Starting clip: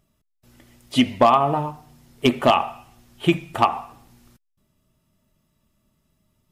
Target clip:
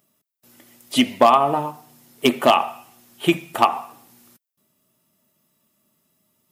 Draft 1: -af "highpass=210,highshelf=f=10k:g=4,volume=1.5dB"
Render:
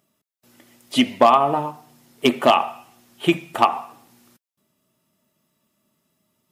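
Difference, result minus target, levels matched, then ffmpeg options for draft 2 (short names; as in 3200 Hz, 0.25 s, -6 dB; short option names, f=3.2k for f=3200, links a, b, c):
8000 Hz band -3.5 dB
-af "highpass=210,highshelf=f=10k:g=14,volume=1.5dB"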